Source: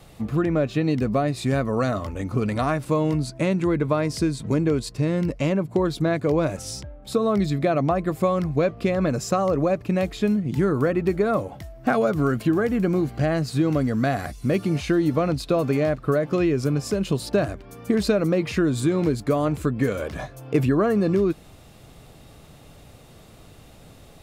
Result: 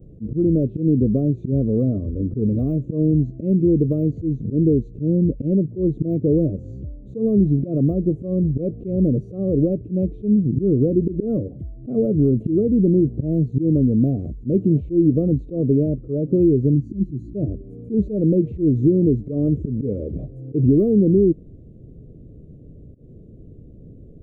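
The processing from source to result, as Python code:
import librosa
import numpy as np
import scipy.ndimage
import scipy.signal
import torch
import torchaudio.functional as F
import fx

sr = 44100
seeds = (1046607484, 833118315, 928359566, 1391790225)

y = fx.freq_compress(x, sr, knee_hz=3700.0, ratio=1.5)
y = fx.auto_swell(y, sr, attack_ms=104.0)
y = fx.spec_box(y, sr, start_s=16.75, length_s=0.6, low_hz=380.0, high_hz=3900.0, gain_db=-19)
y = np.clip(y, -10.0 ** (-14.5 / 20.0), 10.0 ** (-14.5 / 20.0))
y = scipy.signal.sosfilt(scipy.signal.cheby2(4, 40, [830.0, 9000.0], 'bandstop', fs=sr, output='sos'), y)
y = y * 10.0 ** (6.5 / 20.0)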